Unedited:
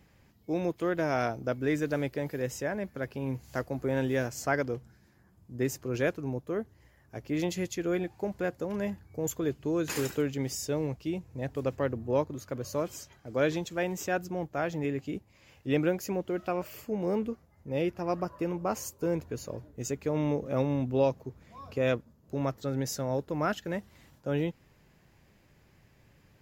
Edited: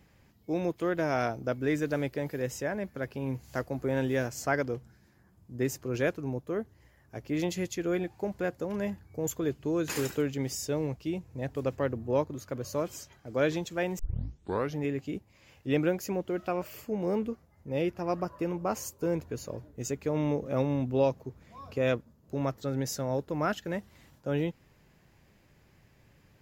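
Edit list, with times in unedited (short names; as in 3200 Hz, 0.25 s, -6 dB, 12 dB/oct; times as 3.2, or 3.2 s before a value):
13.99 tape start 0.81 s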